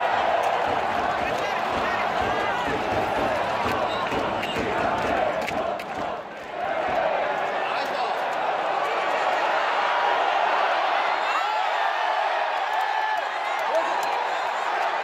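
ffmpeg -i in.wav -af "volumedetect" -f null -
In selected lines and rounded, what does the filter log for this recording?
mean_volume: -24.4 dB
max_volume: -9.7 dB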